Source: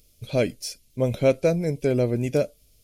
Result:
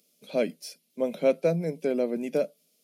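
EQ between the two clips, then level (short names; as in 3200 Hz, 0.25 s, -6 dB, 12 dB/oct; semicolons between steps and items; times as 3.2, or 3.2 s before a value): dynamic EQ 7000 Hz, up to -6 dB, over -54 dBFS, Q 1.8; rippled Chebyshev high-pass 160 Hz, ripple 3 dB; -2.5 dB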